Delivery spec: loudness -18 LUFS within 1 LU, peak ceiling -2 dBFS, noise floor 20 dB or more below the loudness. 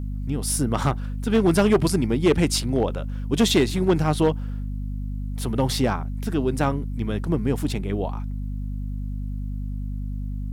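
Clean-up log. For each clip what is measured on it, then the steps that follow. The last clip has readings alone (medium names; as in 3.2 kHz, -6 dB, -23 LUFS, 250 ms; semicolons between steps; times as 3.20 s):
clipped samples 0.8%; clipping level -12.0 dBFS; hum 50 Hz; highest harmonic 250 Hz; hum level -26 dBFS; loudness -24.0 LUFS; peak level -12.0 dBFS; loudness target -18.0 LUFS
-> clip repair -12 dBFS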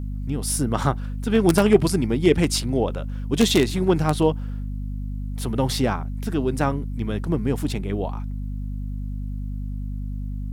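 clipped samples 0.0%; hum 50 Hz; highest harmonic 250 Hz; hum level -26 dBFS
-> hum notches 50/100/150/200/250 Hz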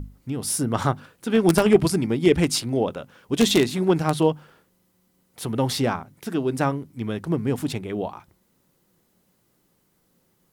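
hum not found; loudness -23.0 LUFS; peak level -2.5 dBFS; loudness target -18.0 LUFS
-> trim +5 dB; peak limiter -2 dBFS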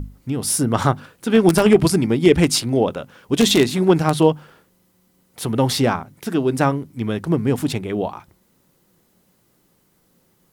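loudness -18.5 LUFS; peak level -2.0 dBFS; noise floor -62 dBFS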